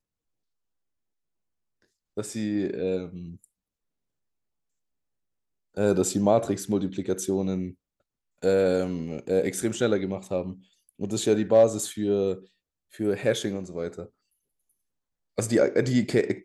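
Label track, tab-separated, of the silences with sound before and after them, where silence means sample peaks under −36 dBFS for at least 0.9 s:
3.340000	5.770000	silence
14.050000	15.380000	silence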